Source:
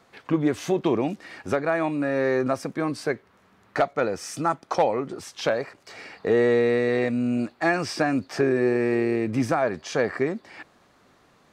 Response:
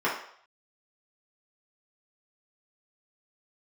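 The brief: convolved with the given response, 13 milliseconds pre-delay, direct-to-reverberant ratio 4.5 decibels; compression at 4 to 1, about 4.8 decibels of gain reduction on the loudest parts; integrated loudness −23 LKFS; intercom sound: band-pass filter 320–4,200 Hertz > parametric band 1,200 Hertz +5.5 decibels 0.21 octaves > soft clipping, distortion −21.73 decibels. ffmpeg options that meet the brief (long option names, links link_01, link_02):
-filter_complex "[0:a]acompressor=threshold=-22dB:ratio=4,asplit=2[link_01][link_02];[1:a]atrim=start_sample=2205,adelay=13[link_03];[link_02][link_03]afir=irnorm=-1:irlink=0,volume=-18dB[link_04];[link_01][link_04]amix=inputs=2:normalize=0,highpass=320,lowpass=4200,equalizer=frequency=1200:width_type=o:width=0.21:gain=5.5,asoftclip=threshold=-16dB,volume=6dB"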